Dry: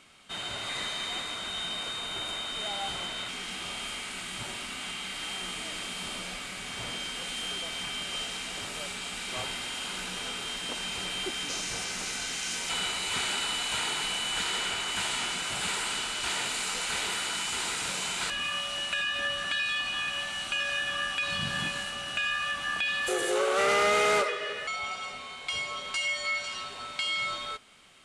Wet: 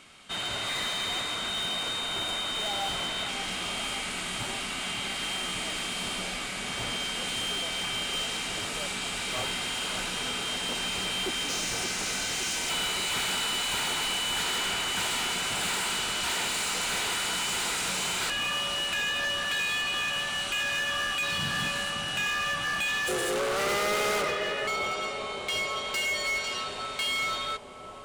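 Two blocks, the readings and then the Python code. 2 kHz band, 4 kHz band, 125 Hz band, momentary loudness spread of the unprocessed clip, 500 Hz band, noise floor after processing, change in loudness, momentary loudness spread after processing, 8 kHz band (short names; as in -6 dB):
+1.5 dB, +2.5 dB, +4.0 dB, 7 LU, 0.0 dB, -35 dBFS, +2.0 dB, 4 LU, +2.5 dB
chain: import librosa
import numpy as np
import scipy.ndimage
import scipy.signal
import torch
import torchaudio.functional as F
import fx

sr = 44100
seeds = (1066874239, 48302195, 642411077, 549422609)

y = np.clip(x, -10.0 ** (-30.5 / 20.0), 10.0 ** (-30.5 / 20.0))
y = fx.echo_bbd(y, sr, ms=569, stages=4096, feedback_pct=75, wet_db=-8.0)
y = F.gain(torch.from_numpy(y), 4.0).numpy()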